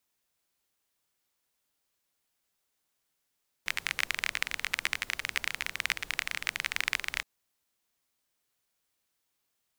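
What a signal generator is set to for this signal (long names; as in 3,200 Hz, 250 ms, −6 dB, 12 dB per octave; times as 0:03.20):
rain-like ticks over hiss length 3.57 s, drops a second 24, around 2,100 Hz, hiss −17.5 dB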